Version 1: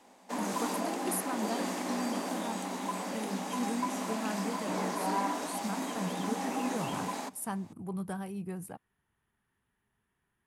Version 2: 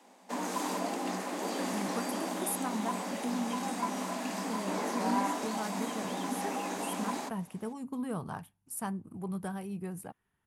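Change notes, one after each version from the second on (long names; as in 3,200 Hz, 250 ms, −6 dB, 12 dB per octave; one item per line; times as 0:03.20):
speech: entry +1.35 s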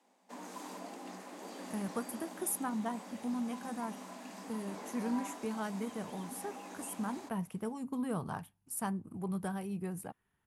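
background −12.0 dB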